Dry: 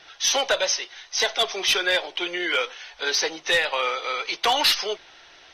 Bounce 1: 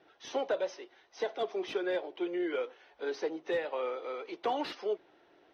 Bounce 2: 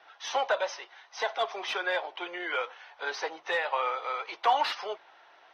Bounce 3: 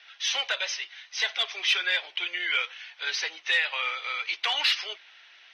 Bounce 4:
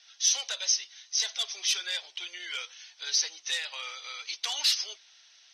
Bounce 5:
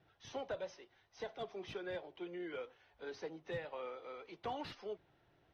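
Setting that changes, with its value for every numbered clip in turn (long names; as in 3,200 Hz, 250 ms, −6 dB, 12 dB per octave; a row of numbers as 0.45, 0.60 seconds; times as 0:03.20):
resonant band-pass, frequency: 320, 900, 2,400, 6,300, 120 Hertz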